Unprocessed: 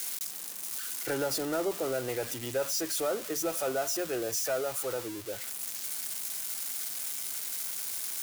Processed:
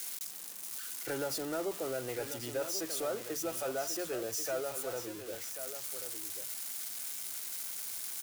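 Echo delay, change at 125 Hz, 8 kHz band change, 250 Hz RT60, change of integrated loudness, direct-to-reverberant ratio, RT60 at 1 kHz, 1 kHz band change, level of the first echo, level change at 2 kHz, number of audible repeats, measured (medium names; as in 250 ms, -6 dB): 1089 ms, -4.5 dB, -4.5 dB, no reverb, -4.5 dB, no reverb, no reverb, -4.5 dB, -10.0 dB, -4.5 dB, 1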